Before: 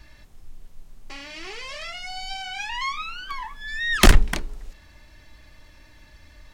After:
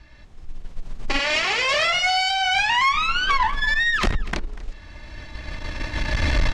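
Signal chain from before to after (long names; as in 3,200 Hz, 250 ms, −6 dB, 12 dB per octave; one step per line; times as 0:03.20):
camcorder AGC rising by 15 dB per second
0:01.19–0:02.95: elliptic band-pass filter 550–7,700 Hz
0:03.49–0:04.27: downward compressor 3 to 1, threshold −18 dBFS, peak gain reduction 9.5 dB
tube saturation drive 17 dB, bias 0.65
high-frequency loss of the air 92 metres
on a send: single-tap delay 241 ms −19.5 dB
on the sum: level +4 dB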